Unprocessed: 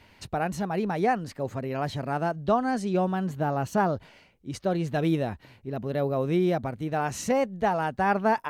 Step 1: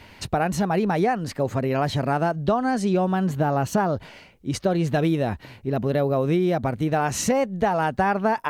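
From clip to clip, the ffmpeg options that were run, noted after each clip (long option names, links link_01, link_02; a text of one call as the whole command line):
ffmpeg -i in.wav -af "acompressor=threshold=-27dB:ratio=6,volume=9dB" out.wav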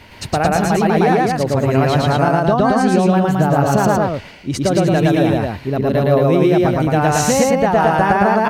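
ffmpeg -i in.wav -af "aecho=1:1:113.7|221.6:1|0.708,volume=4.5dB" out.wav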